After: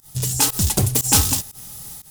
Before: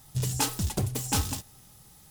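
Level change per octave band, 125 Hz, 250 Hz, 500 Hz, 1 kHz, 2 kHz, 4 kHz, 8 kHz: +7.5, +7.5, +7.5, +6.5, +8.0, +11.0, +13.5 decibels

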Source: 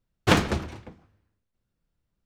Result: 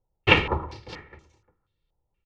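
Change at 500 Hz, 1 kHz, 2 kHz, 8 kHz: +1.0, +1.5, +6.0, −15.5 decibels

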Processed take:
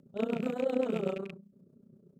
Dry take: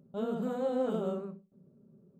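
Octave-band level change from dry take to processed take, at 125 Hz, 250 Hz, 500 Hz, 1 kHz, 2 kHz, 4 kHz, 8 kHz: +0.5 dB, +1.0 dB, +0.5 dB, −2.0 dB, +7.5 dB, +4.0 dB, can't be measured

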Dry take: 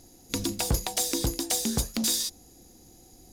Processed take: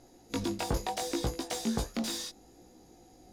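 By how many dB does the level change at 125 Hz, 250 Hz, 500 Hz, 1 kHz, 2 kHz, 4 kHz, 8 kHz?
−5.0, −2.5, −0.5, +1.0, −3.0, −8.0, −12.0 decibels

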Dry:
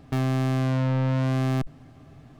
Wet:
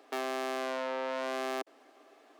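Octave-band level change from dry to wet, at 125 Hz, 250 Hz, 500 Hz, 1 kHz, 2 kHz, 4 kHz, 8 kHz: below −40 dB, −17.0 dB, −1.5 dB, −1.5 dB, −1.5 dB, −1.5 dB, can't be measured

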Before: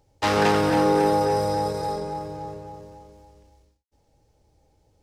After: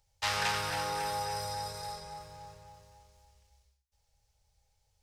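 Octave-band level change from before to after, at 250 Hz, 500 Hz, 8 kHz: −26.0, −19.5, −1.5 decibels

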